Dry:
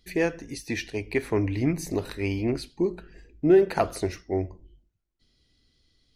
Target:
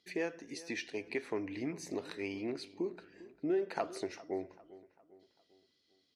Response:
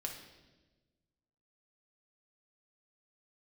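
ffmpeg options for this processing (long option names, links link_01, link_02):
-filter_complex "[0:a]acompressor=threshold=-29dB:ratio=2,highpass=260,lowpass=7400,asplit=2[link_01][link_02];[link_02]adelay=399,lowpass=frequency=2500:poles=1,volume=-18dB,asplit=2[link_03][link_04];[link_04]adelay=399,lowpass=frequency=2500:poles=1,volume=0.48,asplit=2[link_05][link_06];[link_06]adelay=399,lowpass=frequency=2500:poles=1,volume=0.48,asplit=2[link_07][link_08];[link_08]adelay=399,lowpass=frequency=2500:poles=1,volume=0.48[link_09];[link_01][link_03][link_05][link_07][link_09]amix=inputs=5:normalize=0,volume=-5.5dB"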